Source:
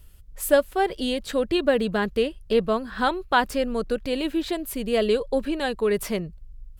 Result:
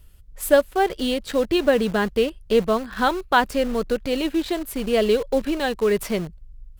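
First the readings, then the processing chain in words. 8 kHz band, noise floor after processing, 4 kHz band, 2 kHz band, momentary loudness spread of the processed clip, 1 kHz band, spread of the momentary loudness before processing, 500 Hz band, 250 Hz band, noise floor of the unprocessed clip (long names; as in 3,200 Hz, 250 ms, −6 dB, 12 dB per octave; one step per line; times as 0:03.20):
+1.5 dB, −47 dBFS, +2.0 dB, +2.5 dB, 6 LU, +2.5 dB, 6 LU, +2.5 dB, +2.5 dB, −47 dBFS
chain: high-shelf EQ 5,000 Hz −2.5 dB
in parallel at −9 dB: bit reduction 5 bits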